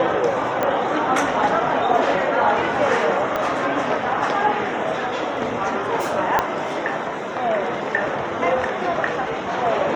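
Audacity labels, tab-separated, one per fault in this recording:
0.630000	0.630000	pop -9 dBFS
3.360000	3.360000	pop -10 dBFS
6.390000	6.390000	pop -4 dBFS

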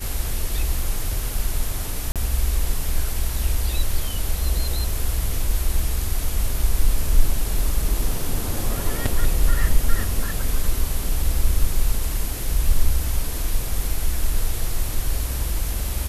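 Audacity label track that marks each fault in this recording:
2.120000	2.160000	gap 37 ms

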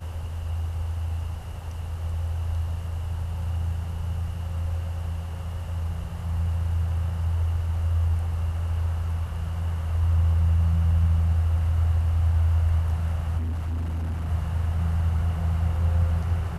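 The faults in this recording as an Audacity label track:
13.370000	14.290000	clipped -25 dBFS

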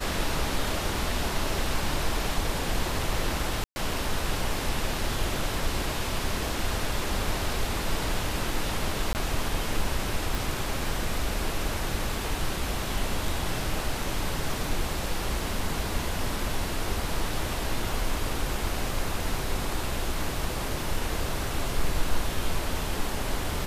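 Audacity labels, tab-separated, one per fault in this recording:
3.640000	3.760000	gap 0.12 s
9.130000	9.150000	gap 19 ms
10.350000	10.350000	pop

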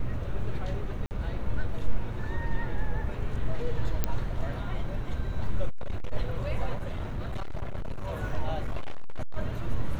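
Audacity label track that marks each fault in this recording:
1.060000	1.110000	gap 49 ms
4.040000	4.040000	pop -12 dBFS
5.690000	6.130000	clipped -24.5 dBFS
6.750000	8.110000	clipped -27.5 dBFS
8.620000	9.370000	clipped -24 dBFS

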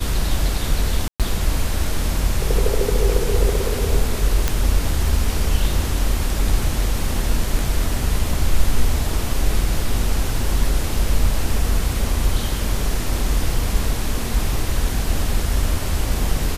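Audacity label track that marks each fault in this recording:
1.080000	1.200000	gap 0.117 s
4.480000	4.480000	pop

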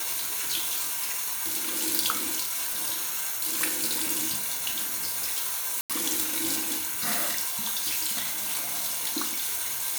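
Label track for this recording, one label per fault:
5.810000	5.900000	gap 87 ms

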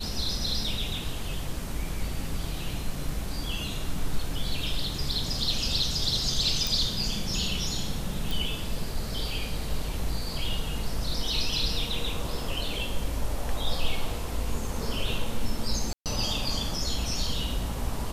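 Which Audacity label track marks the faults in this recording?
6.670000	6.670000	pop
8.310000	8.310000	pop
15.930000	16.060000	gap 0.128 s

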